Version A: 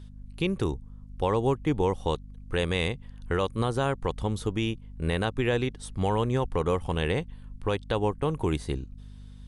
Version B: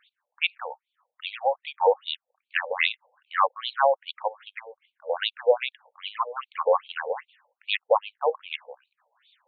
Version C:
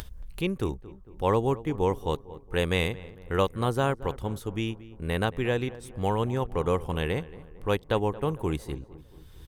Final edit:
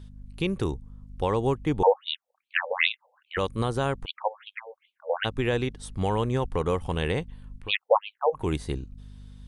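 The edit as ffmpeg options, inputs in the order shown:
-filter_complex "[1:a]asplit=3[a][b][c];[0:a]asplit=4[d][e][f][g];[d]atrim=end=1.832[h];[a]atrim=start=1.828:end=3.372[i];[e]atrim=start=3.368:end=4.06[j];[b]atrim=start=4.04:end=5.26[k];[f]atrim=start=5.24:end=7.72[l];[c]atrim=start=7.56:end=8.48[m];[g]atrim=start=8.32[n];[h][i]acrossfade=d=0.004:c1=hsin:c2=hsin[o];[o][j]acrossfade=d=0.004:c1=hsin:c2=hsin[p];[p][k]acrossfade=d=0.02:c1=tri:c2=tri[q];[q][l]acrossfade=d=0.02:c1=tri:c2=tri[r];[r][m]acrossfade=d=0.16:c1=tri:c2=tri[s];[s][n]acrossfade=d=0.16:c1=tri:c2=tri"

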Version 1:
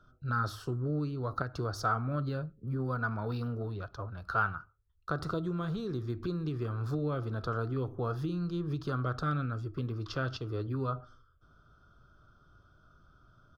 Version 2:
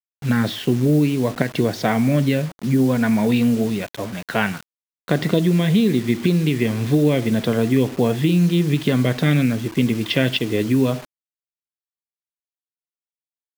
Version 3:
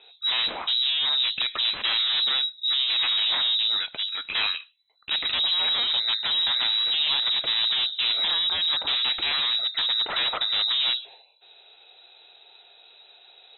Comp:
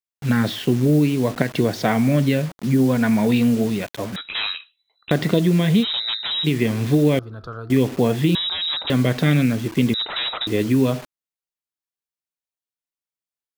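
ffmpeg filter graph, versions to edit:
-filter_complex "[2:a]asplit=4[a][b][c][d];[1:a]asplit=6[e][f][g][h][i][j];[e]atrim=end=4.162[k];[a]atrim=start=4.158:end=5.112[l];[f]atrim=start=5.108:end=5.85[m];[b]atrim=start=5.81:end=6.47[n];[g]atrim=start=6.43:end=7.192[o];[0:a]atrim=start=7.188:end=7.702[p];[h]atrim=start=7.698:end=8.352[q];[c]atrim=start=8.348:end=8.902[r];[i]atrim=start=8.898:end=9.942[s];[d]atrim=start=9.938:end=10.472[t];[j]atrim=start=10.468[u];[k][l]acrossfade=d=0.004:c1=hsin:c2=hsin[v];[v][m]acrossfade=d=0.004:c1=hsin:c2=hsin[w];[w][n]acrossfade=d=0.04:c1=tri:c2=tri[x];[x][o]acrossfade=d=0.04:c1=tri:c2=tri[y];[y][p]acrossfade=d=0.004:c1=hsin:c2=hsin[z];[z][q]acrossfade=d=0.004:c1=hsin:c2=hsin[aa];[aa][r]acrossfade=d=0.004:c1=hsin:c2=hsin[ab];[ab][s]acrossfade=d=0.004:c1=hsin:c2=hsin[ac];[ac][t]acrossfade=d=0.004:c1=hsin:c2=hsin[ad];[ad][u]acrossfade=d=0.004:c1=hsin:c2=hsin"

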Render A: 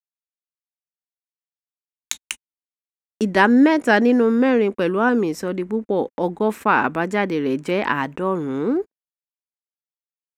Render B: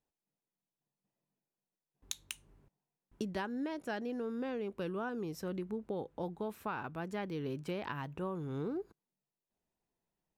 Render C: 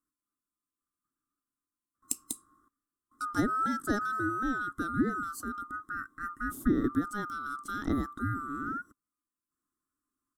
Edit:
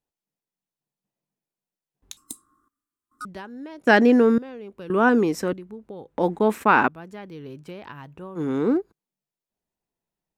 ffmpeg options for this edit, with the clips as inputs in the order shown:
-filter_complex "[0:a]asplit=4[a][b][c][d];[1:a]asplit=6[e][f][g][h][i][j];[e]atrim=end=2.172[k];[2:a]atrim=start=2.168:end=3.252[l];[f]atrim=start=3.248:end=3.872[m];[a]atrim=start=3.868:end=4.382[n];[g]atrim=start=4.378:end=4.902[o];[b]atrim=start=4.898:end=5.532[p];[h]atrim=start=5.528:end=6.182[q];[c]atrim=start=6.178:end=6.882[r];[i]atrim=start=6.878:end=8.41[s];[d]atrim=start=8.35:end=8.82[t];[j]atrim=start=8.76[u];[k][l]acrossfade=d=0.004:c1=hsin:c2=hsin[v];[v][m]acrossfade=d=0.004:c1=hsin:c2=hsin[w];[w][n]acrossfade=d=0.004:c1=hsin:c2=hsin[x];[x][o]acrossfade=d=0.004:c1=hsin:c2=hsin[y];[y][p]acrossfade=d=0.004:c1=hsin:c2=hsin[z];[z][q]acrossfade=d=0.004:c1=hsin:c2=hsin[aa];[aa][r]acrossfade=d=0.004:c1=hsin:c2=hsin[ab];[ab][s]acrossfade=d=0.004:c1=hsin:c2=hsin[ac];[ac][t]acrossfade=d=0.06:c1=tri:c2=tri[ad];[ad][u]acrossfade=d=0.06:c1=tri:c2=tri"

